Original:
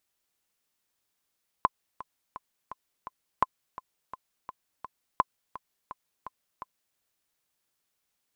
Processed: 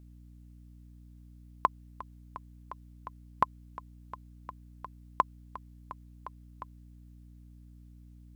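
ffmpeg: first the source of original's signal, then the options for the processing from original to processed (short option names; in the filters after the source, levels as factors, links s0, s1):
-f lavfi -i "aevalsrc='pow(10,(-8-17.5*gte(mod(t,5*60/169),60/169))/20)*sin(2*PI*1030*mod(t,60/169))*exp(-6.91*mod(t,60/169)/0.03)':d=5.32:s=44100"
-af "aeval=exprs='val(0)+0.00282*(sin(2*PI*60*n/s)+sin(2*PI*2*60*n/s)/2+sin(2*PI*3*60*n/s)/3+sin(2*PI*4*60*n/s)/4+sin(2*PI*5*60*n/s)/5)':c=same"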